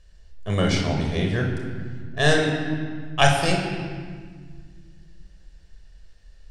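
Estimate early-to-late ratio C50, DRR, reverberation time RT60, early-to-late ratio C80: 3.5 dB, 0.5 dB, 1.7 s, 5.0 dB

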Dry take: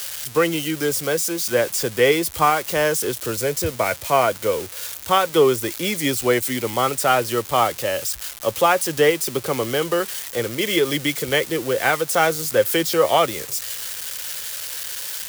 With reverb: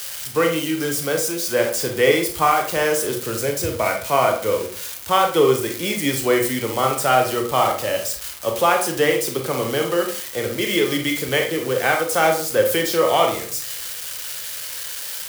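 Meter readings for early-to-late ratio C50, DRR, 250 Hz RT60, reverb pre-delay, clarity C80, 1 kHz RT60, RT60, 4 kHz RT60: 7.0 dB, 2.5 dB, 0.50 s, 27 ms, 12.0 dB, 0.45 s, 0.45 s, 0.30 s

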